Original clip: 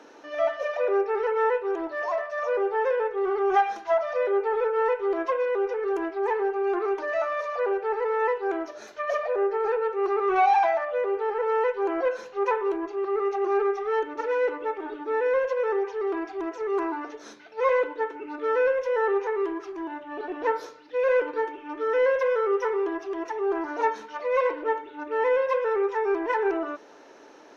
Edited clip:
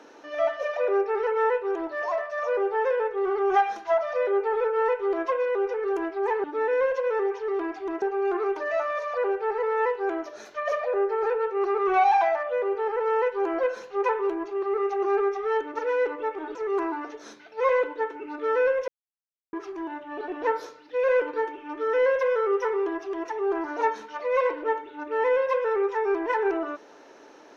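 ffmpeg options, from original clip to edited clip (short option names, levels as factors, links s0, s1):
-filter_complex "[0:a]asplit=6[s0][s1][s2][s3][s4][s5];[s0]atrim=end=6.442[s6];[s1]atrim=start=14.968:end=16.552[s7];[s2]atrim=start=6.438:end=14.972[s8];[s3]atrim=start=16.548:end=18.88,asetpts=PTS-STARTPTS,afade=t=out:st=2.328:d=0.004:c=hsin[s9];[s4]atrim=start=18.88:end=19.53,asetpts=PTS-STARTPTS,volume=0[s10];[s5]atrim=start=19.53,asetpts=PTS-STARTPTS,afade=t=in:d=0.004:c=hsin[s11];[s6][s7]acrossfade=d=0.004:c1=hsin:c2=hsin[s12];[s12][s8]acrossfade=d=0.004:c1=hsin:c2=hsin[s13];[s9][s10][s11]concat=n=3:v=0:a=1[s14];[s13][s14]acrossfade=d=0.004:c1=hsin:c2=hsin"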